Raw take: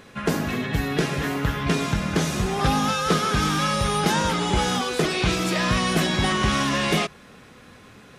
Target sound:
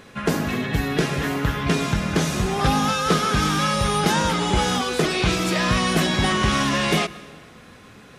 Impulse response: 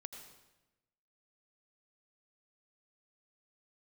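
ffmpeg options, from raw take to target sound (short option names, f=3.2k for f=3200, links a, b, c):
-filter_complex "[0:a]asplit=2[a][b];[1:a]atrim=start_sample=2205,asetrate=28224,aresample=44100[c];[b][c]afir=irnorm=-1:irlink=0,volume=-11dB[d];[a][d]amix=inputs=2:normalize=0"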